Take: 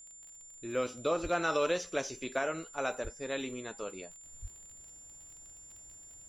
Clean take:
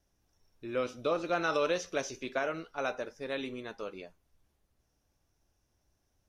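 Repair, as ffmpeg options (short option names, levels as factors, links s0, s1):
-filter_complex "[0:a]adeclick=t=4,bandreject=f=7200:w=30,asplit=3[s0][s1][s2];[s0]afade=t=out:st=1.22:d=0.02[s3];[s1]highpass=f=140:w=0.5412,highpass=f=140:w=1.3066,afade=t=in:st=1.22:d=0.02,afade=t=out:st=1.34:d=0.02[s4];[s2]afade=t=in:st=1.34:d=0.02[s5];[s3][s4][s5]amix=inputs=3:normalize=0,asplit=3[s6][s7][s8];[s6]afade=t=out:st=3.03:d=0.02[s9];[s7]highpass=f=140:w=0.5412,highpass=f=140:w=1.3066,afade=t=in:st=3.03:d=0.02,afade=t=out:st=3.15:d=0.02[s10];[s8]afade=t=in:st=3.15:d=0.02[s11];[s9][s10][s11]amix=inputs=3:normalize=0,asplit=3[s12][s13][s14];[s12]afade=t=out:st=4.41:d=0.02[s15];[s13]highpass=f=140:w=0.5412,highpass=f=140:w=1.3066,afade=t=in:st=4.41:d=0.02,afade=t=out:st=4.53:d=0.02[s16];[s14]afade=t=in:st=4.53:d=0.02[s17];[s15][s16][s17]amix=inputs=3:normalize=0,asetnsamples=n=441:p=0,asendcmd='4.24 volume volume -11dB',volume=1"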